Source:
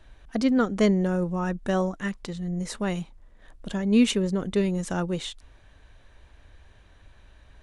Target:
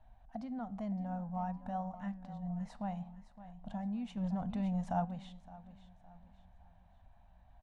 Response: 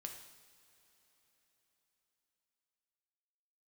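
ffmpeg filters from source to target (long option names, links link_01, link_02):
-filter_complex "[0:a]alimiter=limit=-21.5dB:level=0:latency=1:release=206,firequalizer=gain_entry='entry(240,0);entry(360,-27);entry(720,11);entry(1200,-7);entry(1900,-10);entry(8500,-21)':delay=0.05:min_phase=1,aecho=1:1:564|1128|1692|2256:0.2|0.0778|0.0303|0.0118,flanger=delay=8.9:depth=6.4:regen=88:speed=0.52:shape=triangular,asettb=1/sr,asplit=3[link_01][link_02][link_03];[link_01]atrim=end=4.174[link_04];[link_02]atrim=start=4.17:end=5.05,asetpts=PTS-STARTPTS,afade=type=in:duration=0.004:curve=qsin,afade=type=out:start_time=0.876:duration=0.004:curve=qsin,acontrast=36[link_05];[link_03]atrim=start=5.046[link_06];[link_04][link_05]acrossfade=duration=0.004:curve1=hsin:curve2=qsin[link_07];[link_07][link_06]acrossfade=duration=0.004:curve1=qsin:curve2=hsin,volume=-4.5dB"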